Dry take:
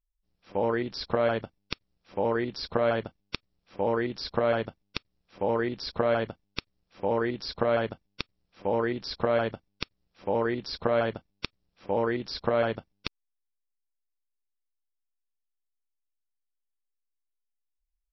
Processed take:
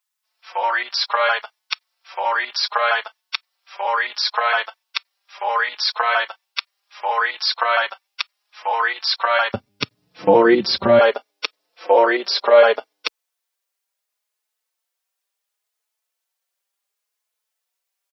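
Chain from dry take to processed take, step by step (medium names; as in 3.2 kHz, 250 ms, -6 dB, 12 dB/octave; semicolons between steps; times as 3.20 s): high-pass 890 Hz 24 dB/octave, from 9.54 s 110 Hz, from 10.99 s 460 Hz; loudness maximiser +17.5 dB; endless flanger 4.3 ms +0.7 Hz; trim +1.5 dB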